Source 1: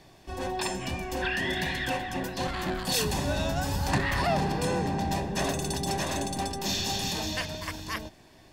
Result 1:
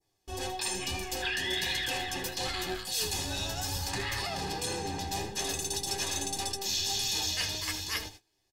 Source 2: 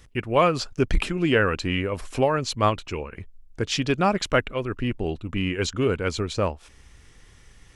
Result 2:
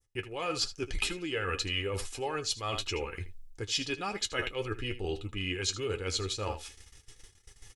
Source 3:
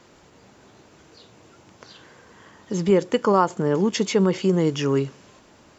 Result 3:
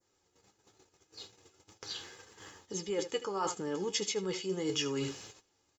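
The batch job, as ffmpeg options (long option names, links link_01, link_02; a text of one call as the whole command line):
ffmpeg -i in.wav -af "flanger=delay=9.1:depth=2.1:regen=42:speed=1.7:shape=triangular,aecho=1:1:79:0.168,agate=range=-22dB:threshold=-52dB:ratio=16:detection=peak,bass=frequency=250:gain=0,treble=frequency=4000:gain=11,areverse,acompressor=threshold=-32dB:ratio=16,areverse,adynamicequalizer=threshold=0.00251:dfrequency=3200:dqfactor=0.73:tfrequency=3200:tqfactor=0.73:attack=5:release=100:ratio=0.375:range=3:mode=boostabove:tftype=bell,aecho=1:1:2.4:0.5" out.wav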